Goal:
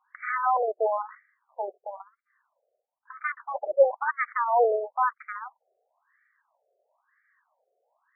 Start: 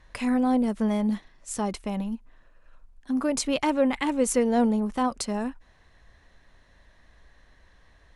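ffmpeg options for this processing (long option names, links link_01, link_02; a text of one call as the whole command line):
ffmpeg -i in.wav -af "aeval=exprs='0.282*(cos(1*acos(clip(val(0)/0.282,-1,1)))-cos(1*PI/2))+0.00501*(cos(5*acos(clip(val(0)/0.282,-1,1)))-cos(5*PI/2))+0.0562*(cos(7*acos(clip(val(0)/0.282,-1,1)))-cos(7*PI/2))':channel_layout=same,afftfilt=real='re*between(b*sr/1024,520*pow(1700/520,0.5+0.5*sin(2*PI*1*pts/sr))/1.41,520*pow(1700/520,0.5+0.5*sin(2*PI*1*pts/sr))*1.41)':imag='im*between(b*sr/1024,520*pow(1700/520,0.5+0.5*sin(2*PI*1*pts/sr))/1.41,520*pow(1700/520,0.5+0.5*sin(2*PI*1*pts/sr))*1.41)':win_size=1024:overlap=0.75,volume=6.5dB" out.wav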